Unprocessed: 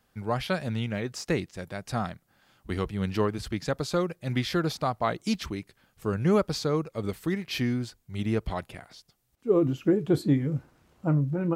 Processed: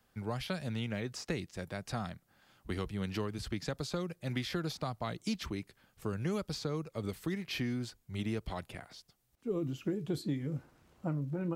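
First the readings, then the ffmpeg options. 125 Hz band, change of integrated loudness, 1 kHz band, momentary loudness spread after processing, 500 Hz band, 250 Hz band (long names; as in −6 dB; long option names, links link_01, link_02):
−8.0 dB, −9.0 dB, −10.5 dB, 8 LU, −11.0 dB, −9.0 dB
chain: -filter_complex "[0:a]acrossover=split=230|2800|6600[link_01][link_02][link_03][link_04];[link_01]acompressor=threshold=-35dB:ratio=4[link_05];[link_02]acompressor=threshold=-35dB:ratio=4[link_06];[link_03]acompressor=threshold=-41dB:ratio=4[link_07];[link_04]acompressor=threshold=-51dB:ratio=4[link_08];[link_05][link_06][link_07][link_08]amix=inputs=4:normalize=0,volume=-2.5dB"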